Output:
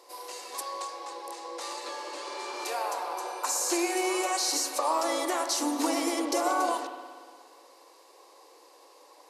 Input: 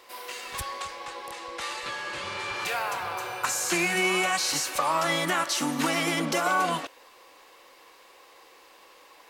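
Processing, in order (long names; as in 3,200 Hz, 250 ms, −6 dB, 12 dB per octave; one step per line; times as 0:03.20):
linear-phase brick-wall band-pass 260–13,000 Hz
flat-topped bell 2,100 Hz −10.5 dB
spring reverb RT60 1.8 s, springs 58 ms, chirp 20 ms, DRR 7 dB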